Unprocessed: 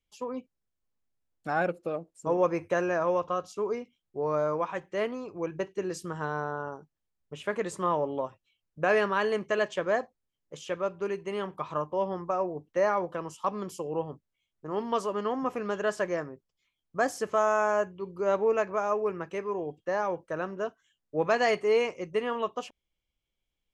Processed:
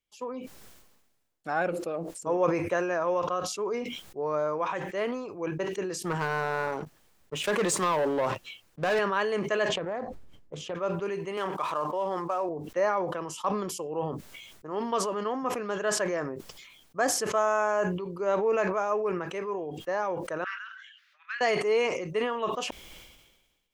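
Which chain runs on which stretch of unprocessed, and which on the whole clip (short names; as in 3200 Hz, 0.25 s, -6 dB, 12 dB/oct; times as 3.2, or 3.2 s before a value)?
6.03–8.99 compressor, threshold -27 dBFS + sample leveller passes 3 + three-band expander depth 40%
9.69–10.75 tilt -3.5 dB/oct + compressor 5:1, threshold -29 dBFS + Doppler distortion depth 0.24 ms
11.37–12.49 median filter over 9 samples + HPF 530 Hz 6 dB/oct + fast leveller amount 70%
20.44–21.41 steep high-pass 1400 Hz 48 dB/oct + air absorption 290 m
whole clip: low shelf 170 Hz -9.5 dB; sustainer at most 45 dB/s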